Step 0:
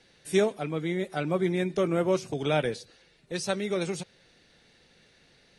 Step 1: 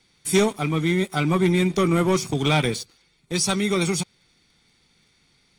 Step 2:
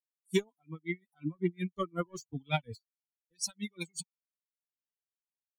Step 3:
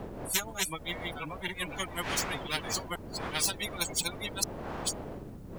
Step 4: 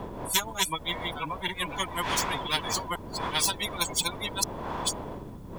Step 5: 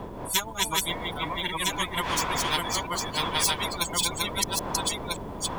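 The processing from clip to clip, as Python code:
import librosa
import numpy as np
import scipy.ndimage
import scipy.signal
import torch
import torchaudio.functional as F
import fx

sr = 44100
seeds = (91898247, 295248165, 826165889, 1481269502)

y1 = fx.high_shelf(x, sr, hz=5800.0, db=8.0)
y1 = y1 + 0.6 * np.pad(y1, (int(0.9 * sr / 1000.0), 0))[:len(y1)]
y1 = fx.leveller(y1, sr, passes=2)
y2 = fx.bin_expand(y1, sr, power=3.0)
y2 = y2 * 10.0 ** (-36 * (0.5 - 0.5 * np.cos(2.0 * np.pi * 5.5 * np.arange(len(y2)) / sr)) / 20.0)
y2 = F.gain(torch.from_numpy(y2), -3.5).numpy()
y3 = fx.reverse_delay(y2, sr, ms=493, wet_db=-8.0)
y3 = fx.dmg_wind(y3, sr, seeds[0], corner_hz=180.0, level_db=-44.0)
y3 = fx.spectral_comp(y3, sr, ratio=10.0)
y3 = F.gain(torch.from_numpy(y3), 4.5).numpy()
y4 = fx.small_body(y3, sr, hz=(990.0, 3400.0), ring_ms=25, db=11)
y4 = F.gain(torch.from_numpy(y4), 2.5).numpy()
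y5 = fx.reverse_delay(y4, sr, ms=574, wet_db=-1.5)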